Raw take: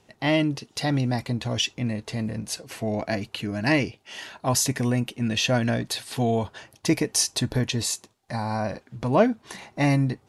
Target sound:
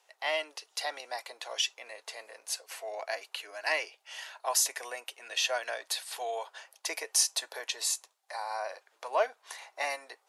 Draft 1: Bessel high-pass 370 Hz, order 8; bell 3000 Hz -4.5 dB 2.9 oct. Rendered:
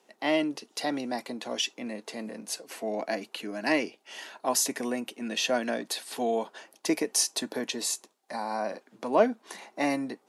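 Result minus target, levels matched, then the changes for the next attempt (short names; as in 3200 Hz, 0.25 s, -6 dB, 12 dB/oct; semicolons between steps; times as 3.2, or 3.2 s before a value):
500 Hz band +4.0 dB
change: Bessel high-pass 910 Hz, order 8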